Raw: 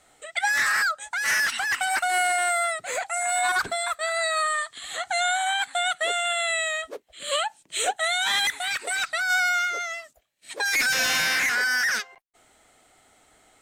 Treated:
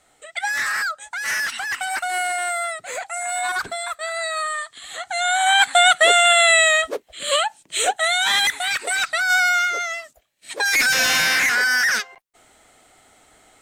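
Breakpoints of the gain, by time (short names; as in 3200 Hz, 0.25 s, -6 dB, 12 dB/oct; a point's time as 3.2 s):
5.12 s -0.5 dB
5.61 s +11.5 dB
6.8 s +11.5 dB
7.47 s +5 dB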